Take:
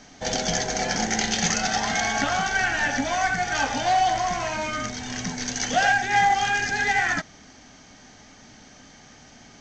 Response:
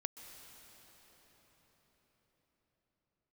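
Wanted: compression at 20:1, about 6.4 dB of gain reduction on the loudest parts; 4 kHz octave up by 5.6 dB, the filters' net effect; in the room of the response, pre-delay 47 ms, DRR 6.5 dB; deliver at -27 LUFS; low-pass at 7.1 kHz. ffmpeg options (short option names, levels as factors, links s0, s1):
-filter_complex "[0:a]lowpass=7100,equalizer=f=4000:t=o:g=8,acompressor=threshold=0.0891:ratio=20,asplit=2[s0][s1];[1:a]atrim=start_sample=2205,adelay=47[s2];[s1][s2]afir=irnorm=-1:irlink=0,volume=0.596[s3];[s0][s3]amix=inputs=2:normalize=0,volume=0.708"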